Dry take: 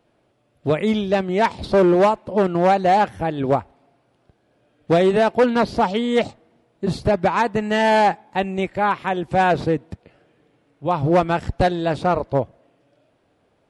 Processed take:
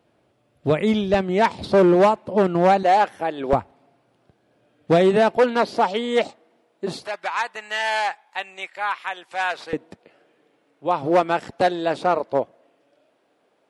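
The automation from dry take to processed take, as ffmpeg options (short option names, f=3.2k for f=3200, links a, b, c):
-af "asetnsamples=n=441:p=0,asendcmd='1.14 highpass f 100;2.83 highpass f 380;3.53 highpass f 100;5.37 highpass f 320;7.05 highpass f 1200;9.73 highpass f 300',highpass=50"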